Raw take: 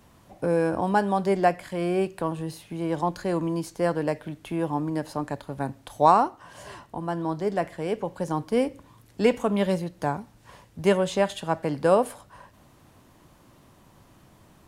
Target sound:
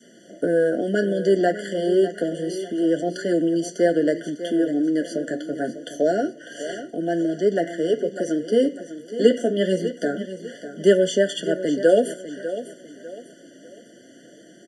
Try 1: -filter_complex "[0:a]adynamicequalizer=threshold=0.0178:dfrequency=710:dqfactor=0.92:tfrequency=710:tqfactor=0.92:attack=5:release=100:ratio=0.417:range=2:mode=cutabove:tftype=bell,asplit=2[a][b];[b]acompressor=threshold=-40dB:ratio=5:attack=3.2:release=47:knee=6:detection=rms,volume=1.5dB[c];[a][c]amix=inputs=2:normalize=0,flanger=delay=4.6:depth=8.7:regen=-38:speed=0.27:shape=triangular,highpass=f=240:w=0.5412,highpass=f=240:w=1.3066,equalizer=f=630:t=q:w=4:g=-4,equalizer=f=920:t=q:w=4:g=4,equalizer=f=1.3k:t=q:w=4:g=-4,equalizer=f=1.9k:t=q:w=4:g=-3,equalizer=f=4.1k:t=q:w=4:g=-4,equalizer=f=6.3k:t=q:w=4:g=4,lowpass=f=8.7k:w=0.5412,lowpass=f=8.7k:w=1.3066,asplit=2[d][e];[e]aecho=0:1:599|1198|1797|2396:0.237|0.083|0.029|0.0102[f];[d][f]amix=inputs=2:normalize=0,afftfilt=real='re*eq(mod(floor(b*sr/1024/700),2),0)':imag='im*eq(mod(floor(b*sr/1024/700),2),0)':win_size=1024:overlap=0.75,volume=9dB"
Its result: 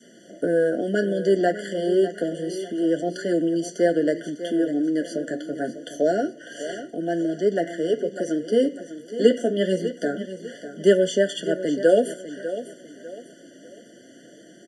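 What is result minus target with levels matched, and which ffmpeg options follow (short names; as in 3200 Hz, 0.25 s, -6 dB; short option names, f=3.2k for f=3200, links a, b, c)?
compressor: peak gain reduction +6 dB
-filter_complex "[0:a]adynamicequalizer=threshold=0.0178:dfrequency=710:dqfactor=0.92:tfrequency=710:tqfactor=0.92:attack=5:release=100:ratio=0.417:range=2:mode=cutabove:tftype=bell,asplit=2[a][b];[b]acompressor=threshold=-32.5dB:ratio=5:attack=3.2:release=47:knee=6:detection=rms,volume=1.5dB[c];[a][c]amix=inputs=2:normalize=0,flanger=delay=4.6:depth=8.7:regen=-38:speed=0.27:shape=triangular,highpass=f=240:w=0.5412,highpass=f=240:w=1.3066,equalizer=f=630:t=q:w=4:g=-4,equalizer=f=920:t=q:w=4:g=4,equalizer=f=1.3k:t=q:w=4:g=-4,equalizer=f=1.9k:t=q:w=4:g=-3,equalizer=f=4.1k:t=q:w=4:g=-4,equalizer=f=6.3k:t=q:w=4:g=4,lowpass=f=8.7k:w=0.5412,lowpass=f=8.7k:w=1.3066,asplit=2[d][e];[e]aecho=0:1:599|1198|1797|2396:0.237|0.083|0.029|0.0102[f];[d][f]amix=inputs=2:normalize=0,afftfilt=real='re*eq(mod(floor(b*sr/1024/700),2),0)':imag='im*eq(mod(floor(b*sr/1024/700),2),0)':win_size=1024:overlap=0.75,volume=9dB"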